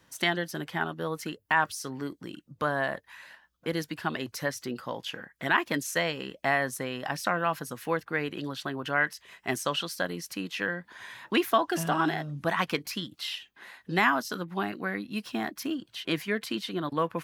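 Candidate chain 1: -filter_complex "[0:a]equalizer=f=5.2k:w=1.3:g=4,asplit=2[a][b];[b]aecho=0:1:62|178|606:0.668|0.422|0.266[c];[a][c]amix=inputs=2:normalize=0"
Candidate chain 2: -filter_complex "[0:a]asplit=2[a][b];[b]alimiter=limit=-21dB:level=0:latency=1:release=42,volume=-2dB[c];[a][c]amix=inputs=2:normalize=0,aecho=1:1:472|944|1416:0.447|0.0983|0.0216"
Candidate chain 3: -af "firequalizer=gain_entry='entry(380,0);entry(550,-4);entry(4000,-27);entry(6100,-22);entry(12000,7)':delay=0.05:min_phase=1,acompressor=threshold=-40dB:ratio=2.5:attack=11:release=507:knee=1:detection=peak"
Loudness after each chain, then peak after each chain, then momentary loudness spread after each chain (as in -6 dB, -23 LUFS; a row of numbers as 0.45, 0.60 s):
-28.0, -26.5, -43.0 LUFS; -8.0, -7.5, -24.0 dBFS; 9, 7, 7 LU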